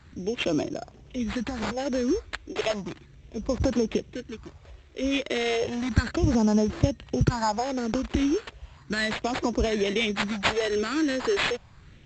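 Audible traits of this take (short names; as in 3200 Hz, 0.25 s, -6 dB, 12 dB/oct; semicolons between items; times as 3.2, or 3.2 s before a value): phasing stages 4, 0.34 Hz, lowest notch 130–2100 Hz; aliases and images of a low sample rate 5900 Hz, jitter 0%; A-law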